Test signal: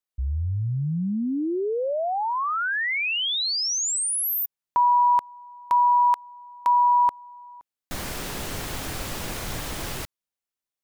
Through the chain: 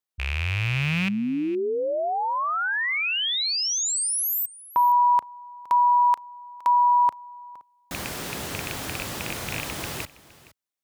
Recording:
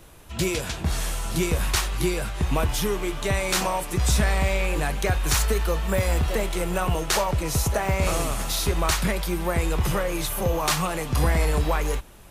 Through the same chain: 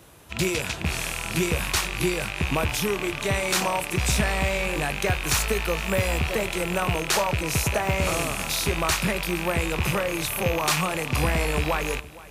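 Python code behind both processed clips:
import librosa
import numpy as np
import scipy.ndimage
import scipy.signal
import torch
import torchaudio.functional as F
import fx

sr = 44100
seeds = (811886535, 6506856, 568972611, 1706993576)

p1 = fx.rattle_buzz(x, sr, strikes_db=-31.0, level_db=-16.0)
p2 = scipy.signal.sosfilt(scipy.signal.butter(2, 75.0, 'highpass', fs=sr, output='sos'), p1)
y = p2 + fx.echo_single(p2, sr, ms=465, db=-19.5, dry=0)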